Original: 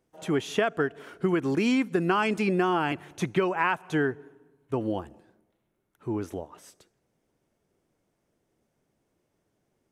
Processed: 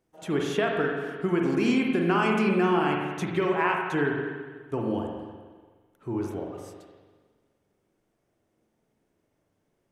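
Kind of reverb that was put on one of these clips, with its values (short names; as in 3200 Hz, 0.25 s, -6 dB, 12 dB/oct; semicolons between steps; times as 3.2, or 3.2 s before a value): spring tank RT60 1.5 s, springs 41/50 ms, chirp 45 ms, DRR 0 dB; gain -2 dB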